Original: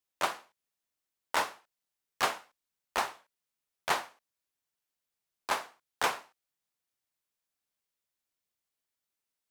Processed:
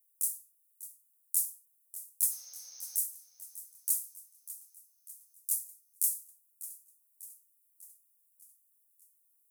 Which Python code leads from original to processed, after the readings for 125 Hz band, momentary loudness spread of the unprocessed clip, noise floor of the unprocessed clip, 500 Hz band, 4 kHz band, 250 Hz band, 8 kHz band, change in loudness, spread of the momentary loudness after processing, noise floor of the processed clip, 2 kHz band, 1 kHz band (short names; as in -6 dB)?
under -25 dB, 14 LU, under -85 dBFS, under -35 dB, -15.0 dB, under -30 dB, +11.0 dB, +0.5 dB, 19 LU, -71 dBFS, under -35 dB, under -40 dB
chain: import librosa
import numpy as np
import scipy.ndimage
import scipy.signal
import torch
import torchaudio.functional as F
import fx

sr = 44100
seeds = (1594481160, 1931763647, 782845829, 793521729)

p1 = scipy.signal.sosfilt(scipy.signal.cheby2(4, 60, [100.0, 3300.0], 'bandstop', fs=sr, output='sos'), x)
p2 = fx.tilt_shelf(p1, sr, db=-9.0, hz=720.0)
p3 = 10.0 ** (-30.5 / 20.0) * np.tanh(p2 / 10.0 ** (-30.5 / 20.0))
p4 = p2 + (p3 * 10.0 ** (-5.0 / 20.0))
p5 = fx.spec_repair(p4, sr, seeds[0], start_s=2.33, length_s=0.64, low_hz=370.0, high_hz=6600.0, source='both')
p6 = p5 + fx.echo_feedback(p5, sr, ms=596, feedback_pct=56, wet_db=-15, dry=0)
y = p6 * 10.0 ** (6.5 / 20.0)